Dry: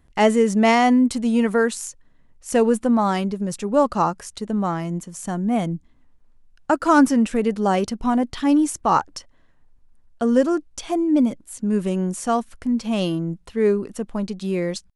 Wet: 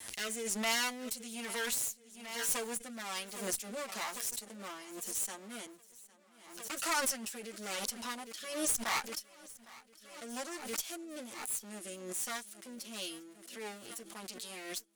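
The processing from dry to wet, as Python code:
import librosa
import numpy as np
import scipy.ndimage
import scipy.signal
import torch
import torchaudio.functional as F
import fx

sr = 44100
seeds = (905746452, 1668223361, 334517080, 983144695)

p1 = fx.lower_of_two(x, sr, delay_ms=8.9)
p2 = np.clip(p1, -10.0 ** (-15.5 / 20.0), 10.0 ** (-15.5 / 20.0))
p3 = p1 + (p2 * 10.0 ** (-5.0 / 20.0))
p4 = fx.rotary(p3, sr, hz=1.1)
p5 = np.diff(p4, prepend=0.0)
p6 = fx.tube_stage(p5, sr, drive_db=20.0, bias=0.45)
p7 = p6 + fx.echo_feedback(p6, sr, ms=807, feedback_pct=58, wet_db=-21.0, dry=0)
y = fx.pre_swell(p7, sr, db_per_s=65.0)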